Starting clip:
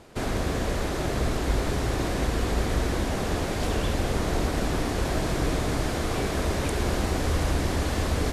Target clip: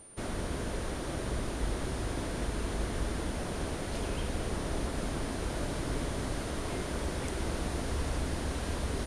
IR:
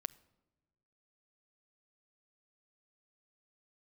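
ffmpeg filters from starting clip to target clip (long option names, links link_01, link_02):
-af "aeval=exprs='val(0)+0.00708*sin(2*PI*10000*n/s)':channel_layout=same,asetrate=40517,aresample=44100,volume=-8dB"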